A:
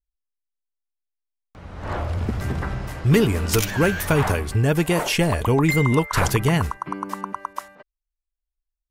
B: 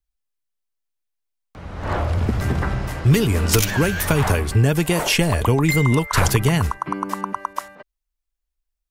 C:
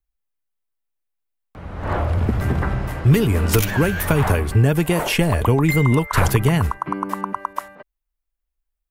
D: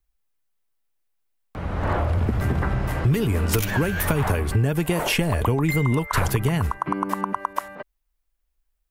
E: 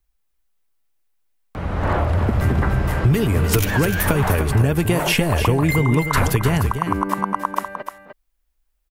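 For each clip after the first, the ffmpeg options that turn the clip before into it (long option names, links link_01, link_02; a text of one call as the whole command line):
ffmpeg -i in.wav -filter_complex "[0:a]acrossover=split=130|3000[link_01][link_02][link_03];[link_02]acompressor=threshold=-21dB:ratio=6[link_04];[link_01][link_04][link_03]amix=inputs=3:normalize=0,volume=4.5dB" out.wav
ffmpeg -i in.wav -af "equalizer=frequency=5700:width=0.72:gain=-8,volume=1dB" out.wav
ffmpeg -i in.wav -af "acompressor=threshold=-27dB:ratio=3,volume=5.5dB" out.wav
ffmpeg -i in.wav -af "aecho=1:1:301:0.376,volume=3.5dB" out.wav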